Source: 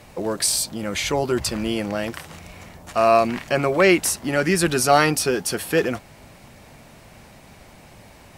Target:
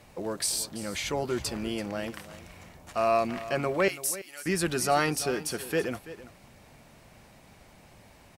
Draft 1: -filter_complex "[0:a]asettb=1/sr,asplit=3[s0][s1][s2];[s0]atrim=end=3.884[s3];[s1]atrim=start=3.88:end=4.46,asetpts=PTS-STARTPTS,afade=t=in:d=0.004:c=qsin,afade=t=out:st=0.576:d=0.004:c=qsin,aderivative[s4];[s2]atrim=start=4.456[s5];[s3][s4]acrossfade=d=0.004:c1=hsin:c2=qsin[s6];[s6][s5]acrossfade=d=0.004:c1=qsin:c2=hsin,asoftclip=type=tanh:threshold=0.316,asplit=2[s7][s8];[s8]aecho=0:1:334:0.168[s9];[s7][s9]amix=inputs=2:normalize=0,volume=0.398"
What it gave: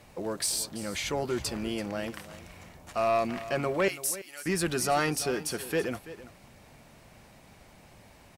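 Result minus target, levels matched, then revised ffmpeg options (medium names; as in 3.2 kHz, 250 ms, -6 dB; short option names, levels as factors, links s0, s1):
saturation: distortion +10 dB
-filter_complex "[0:a]asettb=1/sr,asplit=3[s0][s1][s2];[s0]atrim=end=3.884[s3];[s1]atrim=start=3.88:end=4.46,asetpts=PTS-STARTPTS,afade=t=in:d=0.004:c=qsin,afade=t=out:st=0.576:d=0.004:c=qsin,aderivative[s4];[s2]atrim=start=4.456[s5];[s3][s4]acrossfade=d=0.004:c1=hsin:c2=qsin[s6];[s6][s5]acrossfade=d=0.004:c1=qsin:c2=hsin,asoftclip=type=tanh:threshold=0.668,asplit=2[s7][s8];[s8]aecho=0:1:334:0.168[s9];[s7][s9]amix=inputs=2:normalize=0,volume=0.398"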